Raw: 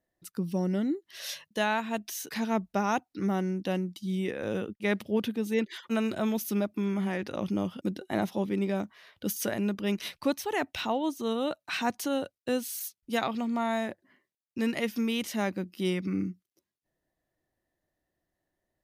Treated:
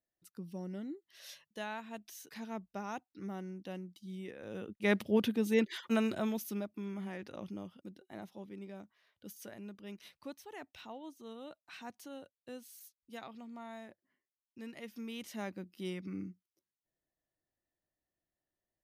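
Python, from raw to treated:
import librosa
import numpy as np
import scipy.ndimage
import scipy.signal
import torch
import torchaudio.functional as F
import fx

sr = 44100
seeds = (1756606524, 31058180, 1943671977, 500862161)

y = fx.gain(x, sr, db=fx.line((4.49, -13.5), (4.9, -1.0), (5.89, -1.0), (6.71, -11.5), (7.36, -11.5), (7.88, -18.0), (14.71, -18.0), (15.38, -11.0)))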